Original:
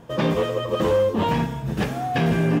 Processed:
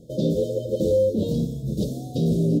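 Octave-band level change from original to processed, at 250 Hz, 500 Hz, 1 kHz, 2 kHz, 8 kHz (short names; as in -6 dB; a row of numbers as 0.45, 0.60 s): 0.0 dB, -0.5 dB, under -20 dB, under -35 dB, 0.0 dB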